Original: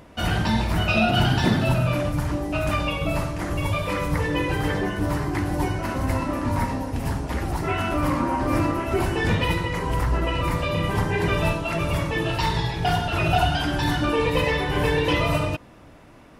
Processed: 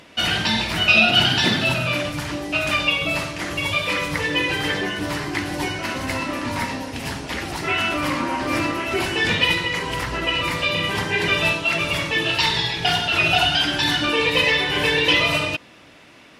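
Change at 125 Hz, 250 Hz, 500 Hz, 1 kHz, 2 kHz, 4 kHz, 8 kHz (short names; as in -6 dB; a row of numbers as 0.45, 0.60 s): -6.0, -1.5, -0.5, +0.5, +8.0, +11.5, +6.0 dB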